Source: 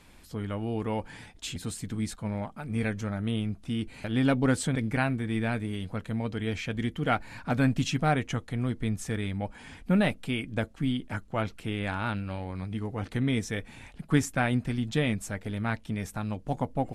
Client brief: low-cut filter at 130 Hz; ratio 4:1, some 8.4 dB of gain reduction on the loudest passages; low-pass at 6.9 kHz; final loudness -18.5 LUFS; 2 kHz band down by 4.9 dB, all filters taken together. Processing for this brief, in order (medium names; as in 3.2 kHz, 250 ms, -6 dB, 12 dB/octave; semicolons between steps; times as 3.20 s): high-pass 130 Hz; low-pass 6.9 kHz; peaking EQ 2 kHz -6.5 dB; compression 4:1, threshold -30 dBFS; trim +17.5 dB